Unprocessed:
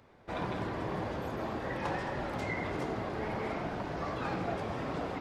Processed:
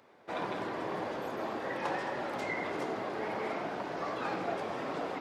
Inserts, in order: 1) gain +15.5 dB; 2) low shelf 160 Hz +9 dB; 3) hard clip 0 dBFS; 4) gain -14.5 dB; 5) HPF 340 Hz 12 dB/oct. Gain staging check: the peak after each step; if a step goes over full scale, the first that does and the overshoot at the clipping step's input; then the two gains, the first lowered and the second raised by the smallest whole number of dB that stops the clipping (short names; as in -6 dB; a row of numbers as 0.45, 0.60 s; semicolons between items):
-6.0, -5.5, -5.5, -20.0, -20.0 dBFS; no overload